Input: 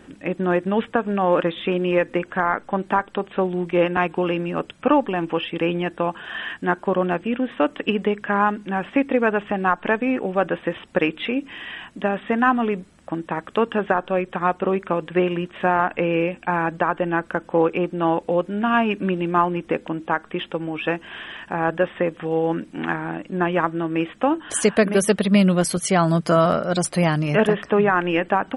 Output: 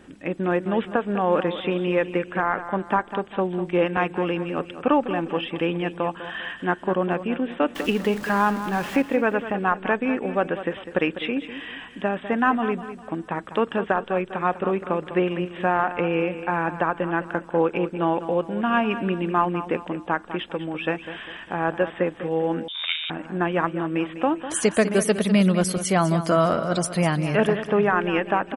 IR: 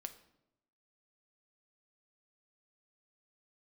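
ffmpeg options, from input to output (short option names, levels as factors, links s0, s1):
-filter_complex "[0:a]asettb=1/sr,asplit=3[s0][s1][s2];[s0]atrim=end=7.754[s3];[s1]atrim=start=7.75:end=9.02,asetpts=PTS-STARTPTS,afade=t=in:d=0.004:c=qsin,afade=t=out:st=1.266:d=0.004:c=qsin,aeval=exprs='val(0)+0.5*0.0355*sgn(val(0))':c=same[s4];[s2]atrim=start=9.016[s5];[s3][s4]acrossfade=d=0.004:c1=hsin:c2=qsin[s6];[s6][s5]acrossfade=d=0.004:c1=qsin:c2=hsin,aecho=1:1:200|400|600|800:0.251|0.098|0.0382|0.0149,asettb=1/sr,asplit=3[s7][s8][s9];[s7]atrim=end=22.684[s10];[s8]atrim=start=22.68:end=23.1,asetpts=PTS-STARTPTS,afade=t=in:d=0.004:c=qsin,afade=t=out:st=0.416:d=0.004:c=qsin,lowpass=f=3300:t=q:w=0.5098,lowpass=f=3300:t=q:w=0.6013,lowpass=f=3300:t=q:w=0.9,lowpass=f=3300:t=q:w=2.563,afreqshift=-3900[s11];[s9]atrim=start=23.096[s12];[s10][s11]acrossfade=d=0.004:c1=hsin:c2=qsin[s13];[s13][s12]acrossfade=d=0.004:c1=qsin:c2=hsin,volume=0.75"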